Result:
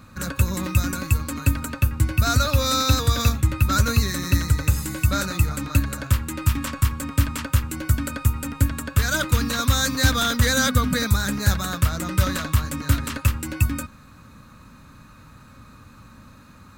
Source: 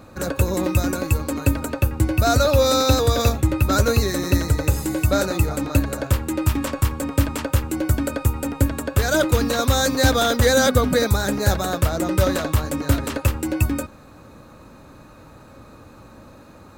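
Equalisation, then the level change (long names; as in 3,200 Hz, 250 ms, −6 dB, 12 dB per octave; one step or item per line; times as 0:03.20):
flat-topped bell 510 Hz −11.5 dB
0.0 dB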